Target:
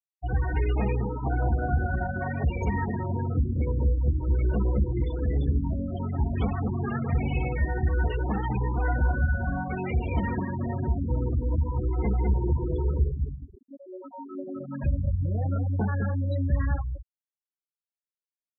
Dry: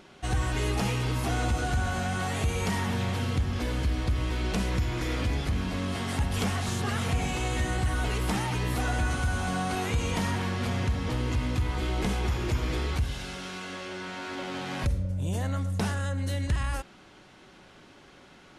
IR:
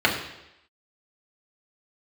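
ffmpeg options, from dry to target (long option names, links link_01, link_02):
-filter_complex "[0:a]asplit=2[link_01][link_02];[link_02]adelay=14,volume=-5dB[link_03];[link_01][link_03]amix=inputs=2:normalize=0,asplit=2[link_04][link_05];[link_05]adelay=207,lowpass=frequency=1300:poles=1,volume=-4dB,asplit=2[link_06][link_07];[link_07]adelay=207,lowpass=frequency=1300:poles=1,volume=0.16,asplit=2[link_08][link_09];[link_09]adelay=207,lowpass=frequency=1300:poles=1,volume=0.16[link_10];[link_06][link_08][link_10]amix=inputs=3:normalize=0[link_11];[link_04][link_11]amix=inputs=2:normalize=0,afftfilt=real='re*gte(hypot(re,im),0.0708)':imag='im*gte(hypot(re,im),0.0708)':win_size=1024:overlap=0.75"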